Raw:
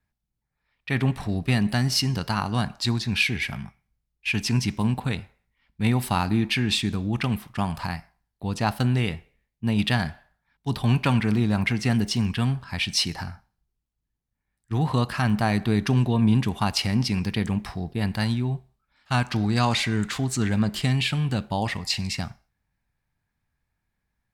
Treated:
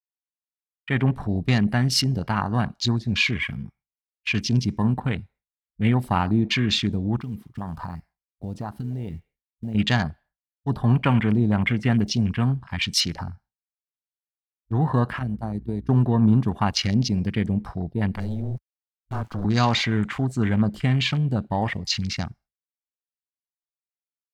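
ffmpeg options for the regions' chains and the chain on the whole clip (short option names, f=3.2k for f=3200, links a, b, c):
-filter_complex "[0:a]asettb=1/sr,asplit=3[a][b][c];[a]atrim=end=7.204[d];[b]atrim=start=7.2:end=9.75,asetpts=PTS-STARTPTS,afade=t=in:d=0.004:c=qsin,afade=t=out:st=2.546:d=0.004:c=qsin,acompressor=threshold=-29dB:ratio=5:attack=3.2:release=140:knee=1:detection=peak,acrusher=bits=5:mode=log:mix=0:aa=0.000001[e];[c]atrim=start=9.746[f];[d][e]acrossfade=d=0.004:c1=hsin:c2=qsin[g];[g][f]acrossfade=d=0.004:c1=qsin:c2=hsin,asettb=1/sr,asplit=3[h][i][j];[h]atrim=end=15.194[k];[i]atrim=start=15.19:end=15.89,asetpts=PTS-STARTPTS,afade=t=in:d=0.004:c=qsin,afade=t=out:st=0.696:d=0.004:c=qsin,agate=range=-13dB:threshold=-23dB:ratio=16:release=100:detection=peak,acrossover=split=490|5400[l][m][n];[l]acompressor=threshold=-28dB:ratio=4[o];[m]acompressor=threshold=-39dB:ratio=4[p];[n]acompressor=threshold=-51dB:ratio=4[q];[o][p][q]amix=inputs=3:normalize=0,aeval=exprs='val(0)+0.00631*(sin(2*PI*60*n/s)+sin(2*PI*2*60*n/s)/2+sin(2*PI*3*60*n/s)/3+sin(2*PI*4*60*n/s)/4+sin(2*PI*5*60*n/s)/5)':c=same[r];[j]atrim=start=15.886[s];[k][r]acrossfade=d=0.004:c1=hsin:c2=qsin[t];[t][s]acrossfade=d=0.004:c1=qsin:c2=hsin,asettb=1/sr,asplit=3[u][v][w];[u]atrim=end=18.174[x];[v]atrim=start=18.17:end=19.45,asetpts=PTS-STARTPTS,afade=t=in:d=0.004:c=qsin,afade=t=out:st=1.276:d=0.004:c=qsin,afreqshift=-14,aeval=exprs='(tanh(20*val(0)+0.4)-tanh(0.4))/20':c=same,aeval=exprs='val(0)*gte(abs(val(0)),0.00841)':c=same[y];[w]atrim=start=19.446[z];[x][y]acrossfade=d=0.004:c1=hsin:c2=qsin[aa];[aa][z]acrossfade=d=0.004:c1=qsin:c2=hsin,agate=range=-33dB:threshold=-50dB:ratio=3:detection=peak,afwtdn=0.02,bandreject=f=2.6k:w=17,volume=2dB"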